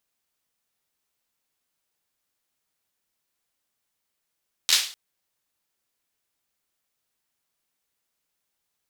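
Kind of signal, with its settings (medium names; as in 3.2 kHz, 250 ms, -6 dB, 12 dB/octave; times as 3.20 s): hand clap length 0.25 s, apart 12 ms, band 3.9 kHz, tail 0.42 s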